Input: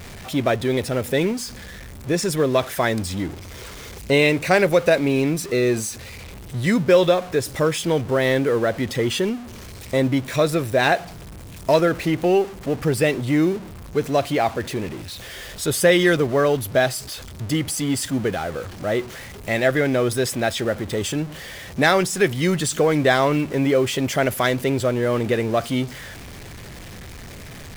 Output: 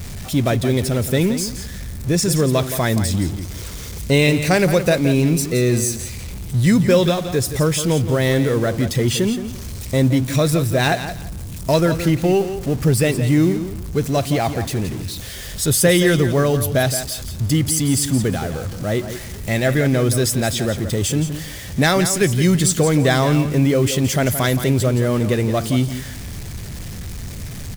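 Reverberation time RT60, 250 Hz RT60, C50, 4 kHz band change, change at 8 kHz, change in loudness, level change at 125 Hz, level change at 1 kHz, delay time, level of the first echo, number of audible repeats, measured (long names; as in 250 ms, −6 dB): no reverb audible, no reverb audible, no reverb audible, +3.0 dB, +7.5 dB, +2.5 dB, +8.5 dB, −1.0 dB, 171 ms, −10.5 dB, 2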